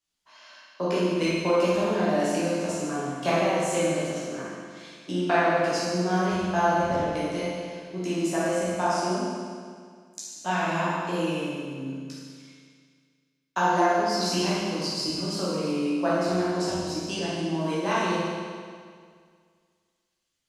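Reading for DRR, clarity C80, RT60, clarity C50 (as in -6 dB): -9.5 dB, -1.0 dB, 2.0 s, -4.0 dB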